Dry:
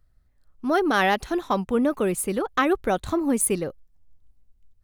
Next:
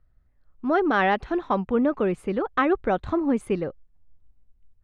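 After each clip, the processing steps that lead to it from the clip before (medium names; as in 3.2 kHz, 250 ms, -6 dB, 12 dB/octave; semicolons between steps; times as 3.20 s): low-pass 2.4 kHz 12 dB/octave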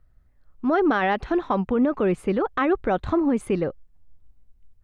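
peak limiter -17.5 dBFS, peak gain reduction 7.5 dB; trim +4 dB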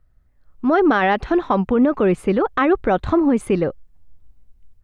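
level rider gain up to 5 dB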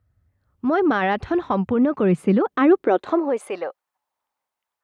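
high-pass sweep 86 Hz -> 910 Hz, 1.60–3.82 s; trim -4 dB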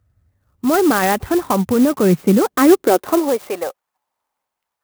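sampling jitter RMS 0.052 ms; trim +4.5 dB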